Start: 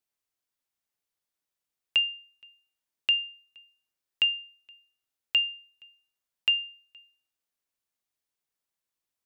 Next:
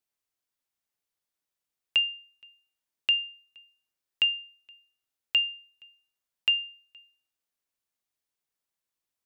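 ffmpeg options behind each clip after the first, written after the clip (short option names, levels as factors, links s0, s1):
-af anull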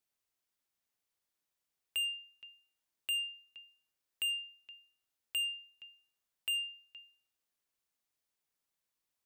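-af "asoftclip=type=tanh:threshold=0.0266"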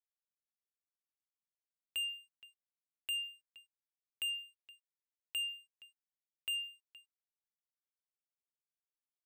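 -af "aeval=exprs='sgn(val(0))*max(abs(val(0))-0.001,0)':c=same,volume=0.75"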